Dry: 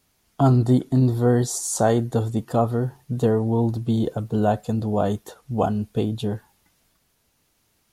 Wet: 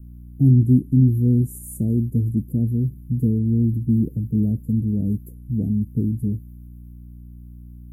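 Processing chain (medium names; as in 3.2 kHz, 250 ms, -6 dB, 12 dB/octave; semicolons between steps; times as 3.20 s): hum 60 Hz, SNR 21 dB; inverse Chebyshev band-stop 980–4200 Hz, stop band 70 dB; trim +4 dB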